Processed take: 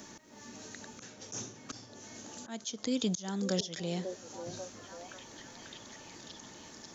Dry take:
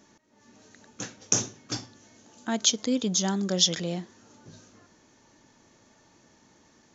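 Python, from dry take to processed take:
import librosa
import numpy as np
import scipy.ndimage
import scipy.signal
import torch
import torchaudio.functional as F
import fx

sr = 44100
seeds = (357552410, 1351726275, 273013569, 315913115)

p1 = fx.high_shelf(x, sr, hz=4100.0, db=6.0)
p2 = fx.auto_swell(p1, sr, attack_ms=454.0)
p3 = p2 + fx.echo_stepped(p2, sr, ms=542, hz=490.0, octaves=0.7, feedback_pct=70, wet_db=-6.5, dry=0)
p4 = fx.band_squash(p3, sr, depth_pct=40)
y = p4 * librosa.db_to_amplitude(1.5)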